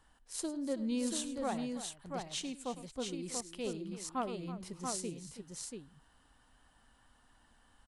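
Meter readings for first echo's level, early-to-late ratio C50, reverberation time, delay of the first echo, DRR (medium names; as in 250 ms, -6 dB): -16.0 dB, no reverb, no reverb, 104 ms, no reverb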